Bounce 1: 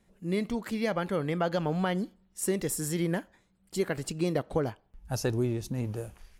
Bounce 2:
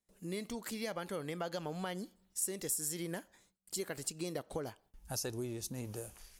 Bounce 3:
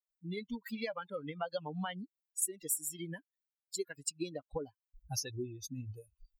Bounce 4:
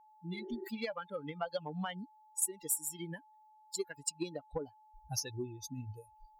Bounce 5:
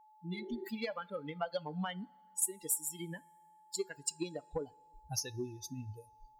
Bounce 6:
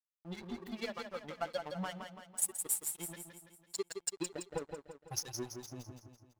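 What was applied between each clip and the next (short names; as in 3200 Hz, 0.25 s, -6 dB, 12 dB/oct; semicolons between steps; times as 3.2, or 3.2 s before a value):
gate with hold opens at -56 dBFS; tone controls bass -5 dB, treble +12 dB; compressor 2:1, threshold -40 dBFS, peak gain reduction 12 dB; gain -2 dB
per-bin expansion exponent 3; gain +6.5 dB
added harmonics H 7 -32 dB, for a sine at -18.5 dBFS; spectral repair 0.36–0.65, 280–1900 Hz before; whine 860 Hz -61 dBFS; gain +1 dB
two-slope reverb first 0.22 s, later 1.9 s, from -20 dB, DRR 16.5 dB
crossover distortion -44 dBFS; feedback echo 0.167 s, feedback 49%, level -6.5 dB; gain +1 dB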